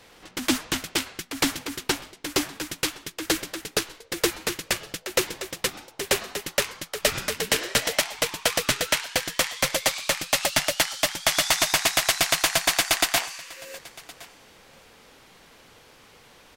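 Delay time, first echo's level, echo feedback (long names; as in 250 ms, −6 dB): 1,066 ms, −22.0 dB, repeats not evenly spaced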